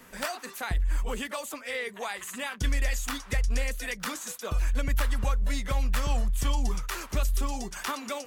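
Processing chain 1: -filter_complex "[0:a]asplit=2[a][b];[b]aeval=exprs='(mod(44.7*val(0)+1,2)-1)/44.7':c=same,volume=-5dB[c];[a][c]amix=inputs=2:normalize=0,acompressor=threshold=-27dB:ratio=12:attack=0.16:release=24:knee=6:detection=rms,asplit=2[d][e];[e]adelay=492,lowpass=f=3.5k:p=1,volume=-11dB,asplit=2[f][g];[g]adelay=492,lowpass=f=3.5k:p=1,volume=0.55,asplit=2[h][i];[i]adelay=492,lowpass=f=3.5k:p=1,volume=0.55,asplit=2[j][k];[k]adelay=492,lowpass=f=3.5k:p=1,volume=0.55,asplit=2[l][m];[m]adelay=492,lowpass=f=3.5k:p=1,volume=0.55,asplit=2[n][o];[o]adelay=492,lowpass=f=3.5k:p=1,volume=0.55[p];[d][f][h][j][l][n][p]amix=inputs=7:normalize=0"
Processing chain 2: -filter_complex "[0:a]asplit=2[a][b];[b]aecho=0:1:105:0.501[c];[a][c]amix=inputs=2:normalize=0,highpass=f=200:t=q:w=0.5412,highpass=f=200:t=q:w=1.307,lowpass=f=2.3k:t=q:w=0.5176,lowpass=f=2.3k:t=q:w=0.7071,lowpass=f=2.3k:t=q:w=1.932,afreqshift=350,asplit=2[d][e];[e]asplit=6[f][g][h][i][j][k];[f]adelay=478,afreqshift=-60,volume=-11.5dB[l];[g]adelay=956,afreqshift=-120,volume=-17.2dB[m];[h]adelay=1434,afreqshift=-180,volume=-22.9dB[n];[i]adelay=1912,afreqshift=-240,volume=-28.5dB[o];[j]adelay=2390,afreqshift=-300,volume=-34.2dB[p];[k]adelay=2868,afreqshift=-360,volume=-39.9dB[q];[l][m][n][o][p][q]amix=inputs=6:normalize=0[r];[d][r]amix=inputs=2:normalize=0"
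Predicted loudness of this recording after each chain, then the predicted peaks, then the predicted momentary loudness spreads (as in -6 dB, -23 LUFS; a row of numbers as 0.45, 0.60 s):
-35.0, -35.5 LUFS; -23.0, -20.0 dBFS; 1, 3 LU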